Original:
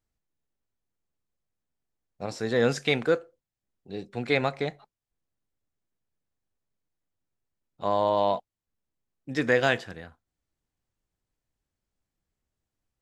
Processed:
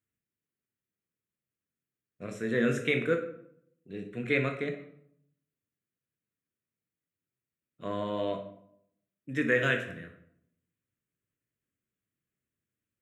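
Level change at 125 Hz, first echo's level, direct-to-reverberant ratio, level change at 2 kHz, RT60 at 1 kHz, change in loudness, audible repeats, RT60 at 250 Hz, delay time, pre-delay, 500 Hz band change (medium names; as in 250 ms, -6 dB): -1.5 dB, no echo, 4.0 dB, -1.0 dB, 0.70 s, -3.5 dB, no echo, 0.85 s, no echo, 14 ms, -5.0 dB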